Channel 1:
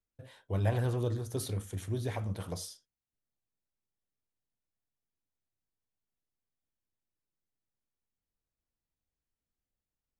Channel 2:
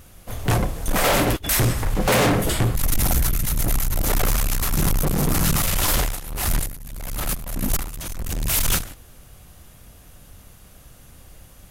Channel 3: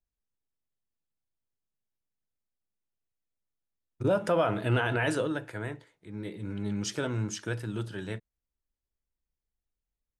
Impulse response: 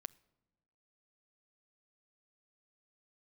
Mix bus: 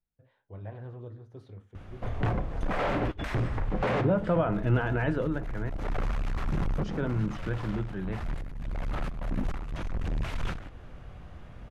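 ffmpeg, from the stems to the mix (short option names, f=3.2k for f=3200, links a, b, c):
-filter_complex "[0:a]flanger=delay=5.1:depth=8.7:regen=-77:speed=0.77:shape=triangular,volume=-10dB,asplit=2[a][b];[b]volume=-3dB[c];[1:a]acompressor=threshold=-31dB:ratio=3,adelay=1750,volume=0dB,asplit=2[d][e];[e]volume=-7.5dB[f];[2:a]equalizer=f=170:w=1.5:g=10,volume=-2dB,asplit=3[g][h][i];[g]atrim=end=5.7,asetpts=PTS-STARTPTS,afade=t=out:st=5.696:d=0.004:c=hsin[j];[h]atrim=start=5.7:end=6.82,asetpts=PTS-STARTPTS,volume=0[k];[i]atrim=start=6.82,asetpts=PTS-STARTPTS,afade=t=in:d=0.004:c=hsin[l];[j][k][l]concat=n=3:v=0:a=1,asplit=2[m][n];[n]apad=whole_len=593265[o];[d][o]sidechaincompress=threshold=-38dB:ratio=8:attack=6.1:release=390[p];[3:a]atrim=start_sample=2205[q];[c][f]amix=inputs=2:normalize=0[r];[r][q]afir=irnorm=-1:irlink=0[s];[a][p][m][s]amix=inputs=4:normalize=0,lowpass=2k"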